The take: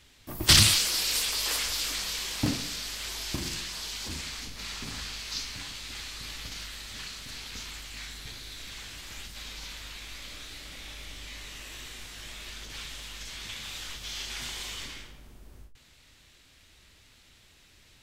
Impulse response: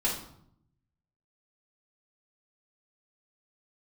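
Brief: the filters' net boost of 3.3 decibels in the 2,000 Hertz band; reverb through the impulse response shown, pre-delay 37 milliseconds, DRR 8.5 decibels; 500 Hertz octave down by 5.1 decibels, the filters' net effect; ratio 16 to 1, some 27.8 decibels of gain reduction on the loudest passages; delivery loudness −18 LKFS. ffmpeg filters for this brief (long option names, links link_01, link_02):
-filter_complex "[0:a]equalizer=frequency=500:width_type=o:gain=-7.5,equalizer=frequency=2000:width_type=o:gain=4.5,acompressor=threshold=-41dB:ratio=16,asplit=2[link_01][link_02];[1:a]atrim=start_sample=2205,adelay=37[link_03];[link_02][link_03]afir=irnorm=-1:irlink=0,volume=-16.5dB[link_04];[link_01][link_04]amix=inputs=2:normalize=0,volume=24.5dB"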